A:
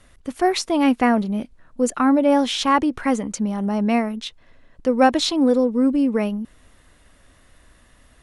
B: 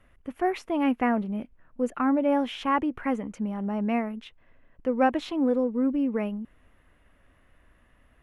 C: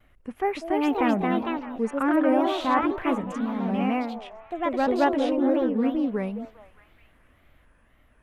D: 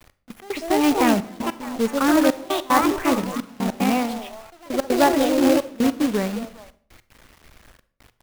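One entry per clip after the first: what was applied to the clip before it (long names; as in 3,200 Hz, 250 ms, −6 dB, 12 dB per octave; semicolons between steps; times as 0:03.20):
flat-topped bell 6,100 Hz −15.5 dB; level −7 dB
delay with pitch and tempo change per echo 327 ms, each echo +2 semitones, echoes 2; echo through a band-pass that steps 202 ms, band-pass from 570 Hz, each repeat 0.7 octaves, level −9.5 dB; tape wow and flutter 150 cents
gate pattern "x..x.xxxxxx" 150 BPM −24 dB; log-companded quantiser 4 bits; convolution reverb RT60 0.55 s, pre-delay 32 ms, DRR 15.5 dB; level +4.5 dB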